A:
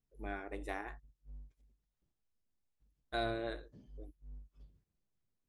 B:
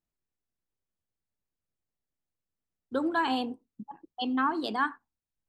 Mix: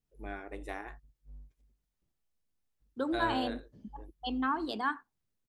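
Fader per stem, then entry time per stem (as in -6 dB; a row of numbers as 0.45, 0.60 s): +0.5, -4.0 dB; 0.00, 0.05 s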